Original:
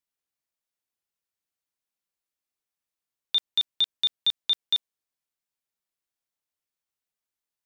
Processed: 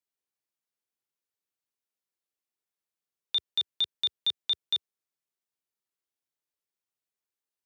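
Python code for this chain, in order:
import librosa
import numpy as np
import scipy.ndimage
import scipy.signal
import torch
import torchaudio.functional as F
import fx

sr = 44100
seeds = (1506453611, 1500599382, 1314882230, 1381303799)

y = scipy.signal.sosfilt(scipy.signal.butter(4, 79.0, 'highpass', fs=sr, output='sos'), x)
y = fx.peak_eq(y, sr, hz=400.0, db=5.0, octaves=0.57)
y = y * librosa.db_to_amplitude(-4.0)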